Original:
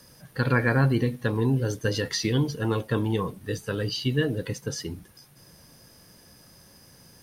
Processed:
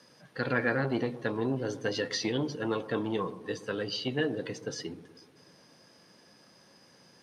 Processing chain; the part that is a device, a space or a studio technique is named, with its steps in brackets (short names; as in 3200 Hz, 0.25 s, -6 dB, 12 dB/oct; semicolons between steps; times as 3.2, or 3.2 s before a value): public-address speaker with an overloaded transformer (core saturation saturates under 400 Hz; BPF 220–5200 Hz); analogue delay 0.122 s, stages 1024, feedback 64%, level -16 dB; gain -2 dB